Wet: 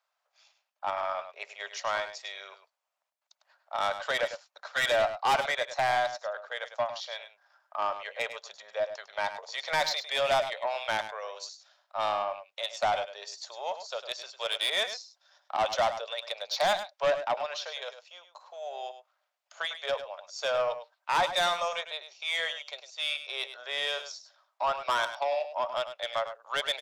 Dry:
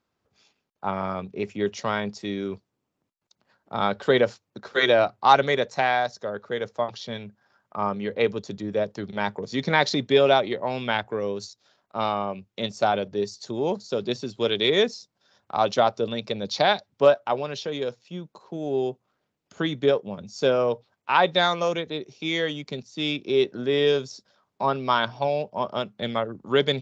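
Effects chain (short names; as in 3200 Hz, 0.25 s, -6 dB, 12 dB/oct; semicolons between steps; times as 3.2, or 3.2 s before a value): elliptic high-pass 610 Hz, stop band 50 dB; soft clip -21 dBFS, distortion -9 dB; echo 0.102 s -11 dB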